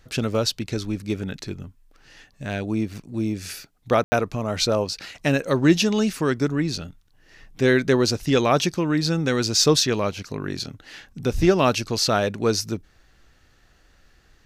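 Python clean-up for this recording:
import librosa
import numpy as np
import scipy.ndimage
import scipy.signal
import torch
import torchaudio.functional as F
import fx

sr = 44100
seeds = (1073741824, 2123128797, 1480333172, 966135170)

y = fx.fix_ambience(x, sr, seeds[0], print_start_s=13.34, print_end_s=13.84, start_s=4.04, end_s=4.12)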